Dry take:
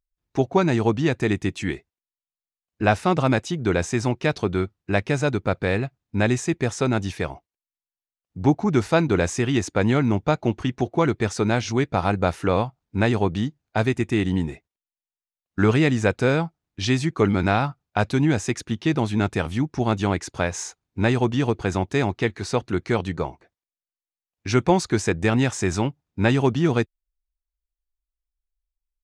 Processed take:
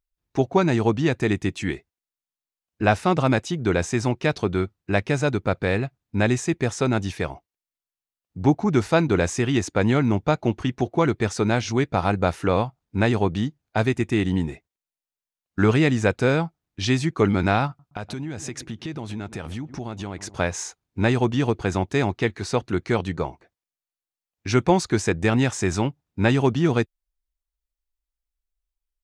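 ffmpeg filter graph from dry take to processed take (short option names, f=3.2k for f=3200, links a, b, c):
-filter_complex "[0:a]asettb=1/sr,asplit=3[a][b][c];[a]atrim=end=17.674[d];[b]atrim=start=17.67:end=20.35,asetpts=PTS-STARTPTS,afade=t=in:d=0.004:c=qsin,afade=t=out:st=2.676:d=0.004:c=qsin,asplit=2[e][f];[f]adelay=120,lowpass=f=930:p=1,volume=-22dB,asplit=2[g][h];[h]adelay=120,lowpass=f=930:p=1,volume=0.54,asplit=2[i][j];[j]adelay=120,lowpass=f=930:p=1,volume=0.54,asplit=2[k][l];[l]adelay=120,lowpass=f=930:p=1,volume=0.54[m];[e][g][i][k][m]amix=inputs=5:normalize=0,atrim=end_sample=118188,acompressor=threshold=-28dB:ratio=6:attack=3.2:release=140:knee=1:detection=peak[n];[c]atrim=start=20.346[o];[d][n]acrossfade=d=0.004:c1=hsin:c2=qsin[p];[p][o]acrossfade=d=0.004:c1=qsin:c2=hsin"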